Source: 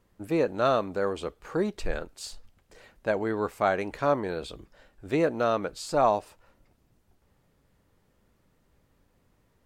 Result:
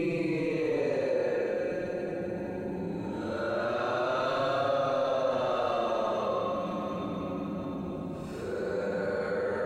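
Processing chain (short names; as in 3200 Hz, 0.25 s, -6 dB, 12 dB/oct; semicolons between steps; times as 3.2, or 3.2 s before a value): bell 1200 Hz -3 dB 0.27 oct; notches 60/120/180 Hz; resonator 180 Hz, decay 0.29 s, harmonics all, mix 80%; in parallel at -9 dB: soft clip -35 dBFS, distortion -8 dB; on the sum: Paulstretch 14×, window 0.05 s, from 0.35; on a send: diffused feedback echo 0.756 s, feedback 41%, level -16 dB; on the sum: fast leveller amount 50%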